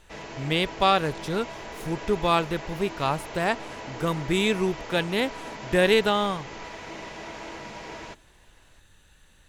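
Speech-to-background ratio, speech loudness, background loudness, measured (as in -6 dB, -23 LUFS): 13.0 dB, -25.5 LUFS, -38.5 LUFS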